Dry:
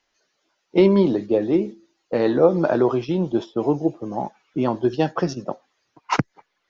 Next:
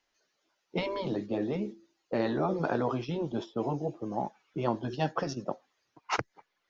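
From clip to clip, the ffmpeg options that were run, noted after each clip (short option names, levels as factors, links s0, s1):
-af "afftfilt=real='re*lt(hypot(re,im),0.794)':imag='im*lt(hypot(re,im),0.794)':win_size=1024:overlap=0.75,volume=0.501"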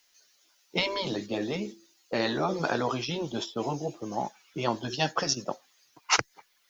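-af "crystalizer=i=8.5:c=0,volume=0.891"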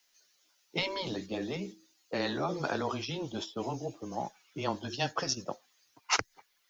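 -af "afreqshift=-14,volume=0.596"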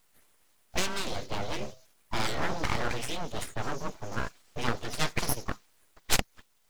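-af "aeval=exprs='abs(val(0))':c=same,volume=1.88"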